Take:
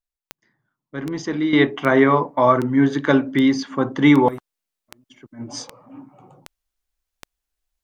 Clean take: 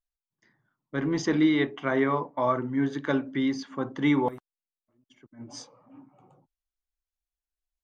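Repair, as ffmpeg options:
ffmpeg -i in.wav -af "adeclick=threshold=4,asetnsamples=nb_out_samples=441:pad=0,asendcmd='1.53 volume volume -10dB',volume=0dB" out.wav

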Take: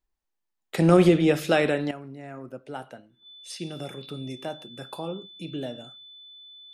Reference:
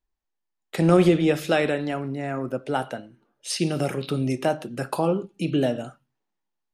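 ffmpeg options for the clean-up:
ffmpeg -i in.wav -af "bandreject=frequency=3500:width=30,asetnsamples=nb_out_samples=441:pad=0,asendcmd='1.91 volume volume 11dB',volume=0dB" out.wav

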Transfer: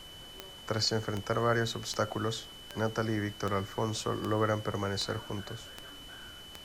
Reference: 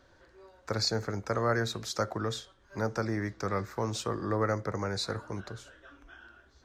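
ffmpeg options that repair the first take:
ffmpeg -i in.wav -af "adeclick=threshold=4,bandreject=frequency=3000:width=30,afftdn=noise_reduction=12:noise_floor=-48" out.wav

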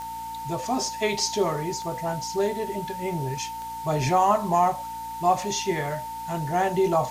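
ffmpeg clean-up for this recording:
ffmpeg -i in.wav -af "adeclick=threshold=4,bandreject=frequency=58.1:width_type=h:width=4,bandreject=frequency=116.2:width_type=h:width=4,bandreject=frequency=174.3:width_type=h:width=4,bandreject=frequency=232.4:width_type=h:width=4,bandreject=frequency=290.5:width_type=h:width=4,bandreject=frequency=900:width=30,afwtdn=0.0045" out.wav

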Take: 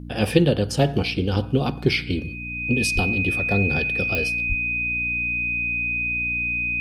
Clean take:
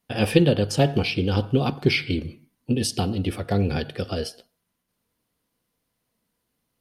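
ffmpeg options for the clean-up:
ffmpeg -i in.wav -filter_complex "[0:a]adeclick=threshold=4,bandreject=frequency=59.2:width_type=h:width=4,bandreject=frequency=118.4:width_type=h:width=4,bandreject=frequency=177.6:width_type=h:width=4,bandreject=frequency=236.8:width_type=h:width=4,bandreject=frequency=296:width_type=h:width=4,bandreject=frequency=2500:width=30,asplit=3[link_01][link_02][link_03];[link_01]afade=type=out:start_time=2.94:duration=0.02[link_04];[link_02]highpass=frequency=140:width=0.5412,highpass=frequency=140:width=1.3066,afade=type=in:start_time=2.94:duration=0.02,afade=type=out:start_time=3.06:duration=0.02[link_05];[link_03]afade=type=in:start_time=3.06:duration=0.02[link_06];[link_04][link_05][link_06]amix=inputs=3:normalize=0,asplit=3[link_07][link_08][link_09];[link_07]afade=type=out:start_time=4.48:duration=0.02[link_10];[link_08]highpass=frequency=140:width=0.5412,highpass=frequency=140:width=1.3066,afade=type=in:start_time=4.48:duration=0.02,afade=type=out:start_time=4.6:duration=0.02[link_11];[link_09]afade=type=in:start_time=4.6:duration=0.02[link_12];[link_10][link_11][link_12]amix=inputs=3:normalize=0" out.wav

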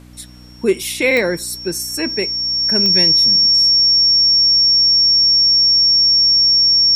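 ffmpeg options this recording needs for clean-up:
ffmpeg -i in.wav -af "adeclick=threshold=4,bandreject=frequency=61.1:width_type=h:width=4,bandreject=frequency=122.2:width_type=h:width=4,bandreject=frequency=183.3:width_type=h:width=4,bandreject=frequency=244.4:width_type=h:width=4,bandreject=frequency=305.5:width_type=h:width=4,bandreject=frequency=5500:width=30,agate=range=-21dB:threshold=-23dB" out.wav

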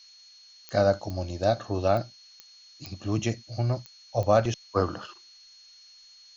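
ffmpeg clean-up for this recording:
ffmpeg -i in.wav -af "adeclick=threshold=4,bandreject=frequency=4300:width=30,afftdn=noise_reduction=18:noise_floor=-53" out.wav

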